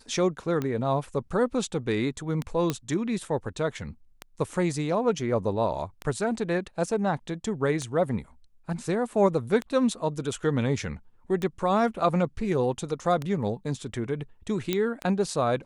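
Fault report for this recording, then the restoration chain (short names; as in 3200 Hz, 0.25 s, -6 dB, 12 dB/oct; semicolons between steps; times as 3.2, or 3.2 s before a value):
tick 33 1/3 rpm -17 dBFS
2.7 pop -12 dBFS
14.73 pop -11 dBFS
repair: de-click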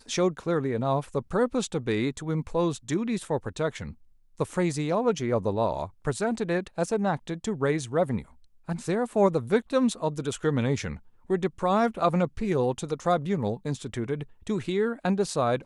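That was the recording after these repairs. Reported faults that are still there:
2.7 pop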